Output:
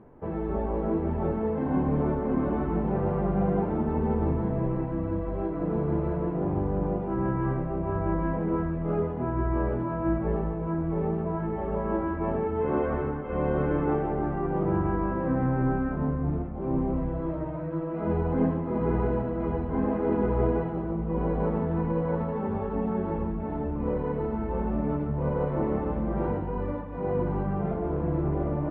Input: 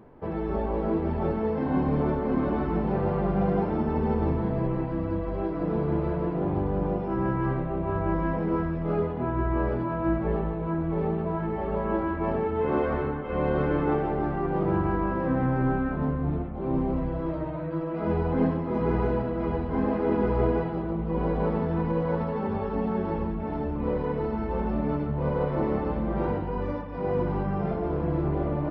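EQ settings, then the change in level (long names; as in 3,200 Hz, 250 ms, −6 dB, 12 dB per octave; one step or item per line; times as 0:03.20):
high-frequency loss of the air 430 metres
0.0 dB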